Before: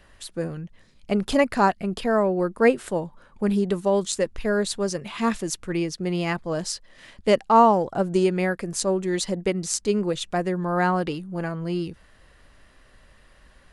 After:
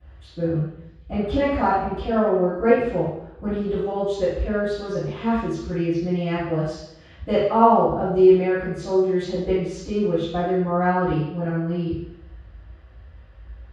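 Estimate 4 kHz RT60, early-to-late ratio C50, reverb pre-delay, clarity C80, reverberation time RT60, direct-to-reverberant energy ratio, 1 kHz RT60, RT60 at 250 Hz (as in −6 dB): 0.80 s, −0.5 dB, 3 ms, 3.0 dB, 0.80 s, −19.5 dB, 0.80 s, 0.85 s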